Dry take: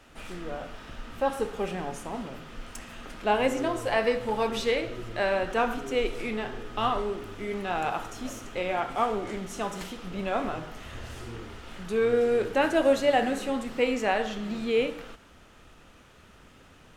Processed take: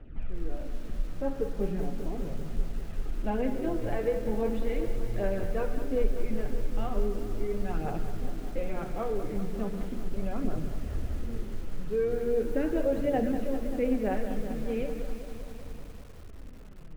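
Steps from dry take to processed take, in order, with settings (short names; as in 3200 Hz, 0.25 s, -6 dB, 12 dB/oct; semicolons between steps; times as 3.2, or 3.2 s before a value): LPF 2000 Hz 12 dB/oct; tilt -3 dB/oct; flange 0.38 Hz, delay 0 ms, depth 7.2 ms, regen +9%; bell 1000 Hz -10.5 dB 1.2 oct; notches 60/120/180/240 Hz; compressor 1.5:1, threshold -33 dBFS, peak gain reduction 8 dB; lo-fi delay 0.195 s, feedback 80%, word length 8-bit, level -10.5 dB; gain +2 dB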